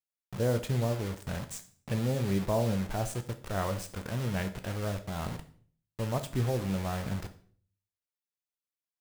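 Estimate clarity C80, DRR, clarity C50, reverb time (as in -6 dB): 18.0 dB, 7.5 dB, 14.0 dB, 0.50 s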